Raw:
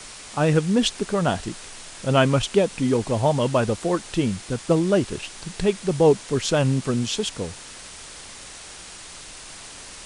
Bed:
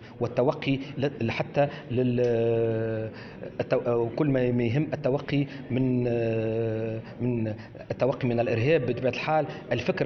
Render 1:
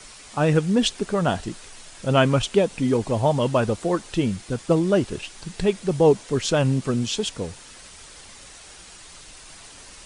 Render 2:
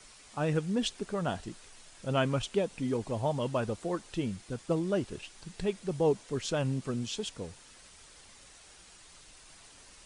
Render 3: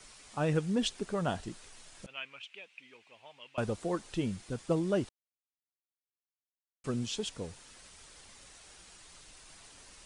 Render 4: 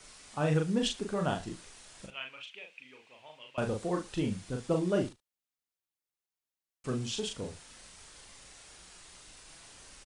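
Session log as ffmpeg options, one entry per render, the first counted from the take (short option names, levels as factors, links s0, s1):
-af "afftdn=nr=6:nf=-41"
-af "volume=0.299"
-filter_complex "[0:a]asettb=1/sr,asplit=3[s0][s1][s2];[s0]atrim=end=2.064[s3];[s1]atrim=start=2.06:end=3.58,asetpts=PTS-STARTPTS,afade=t=in:d=0.004:c=qsin,afade=t=out:st=1.516:d=0.004:c=qsin,bandpass=f=2500:t=q:w=4.2[s4];[s2]atrim=start=3.576[s5];[s3][s4]acrossfade=d=0.004:c1=hsin:c2=qsin[s6];[s6][s5]acrossfade=d=0.004:c1=qsin:c2=hsin,asplit=3[s7][s8][s9];[s7]atrim=end=5.09,asetpts=PTS-STARTPTS,afade=t=out:st=5.086:d=0.004:c=hsin[s10];[s8]atrim=start=5.09:end=6.84,asetpts=PTS-STARTPTS,volume=0[s11];[s9]atrim=start=6.84,asetpts=PTS-STARTPTS,afade=t=in:d=0.004:c=hsin[s12];[s10][s11][s12]concat=n=3:v=0:a=1"
-filter_complex "[0:a]asplit=2[s0][s1];[s1]adelay=39,volume=0.631[s2];[s0][s2]amix=inputs=2:normalize=0,aecho=1:1:74:0.106"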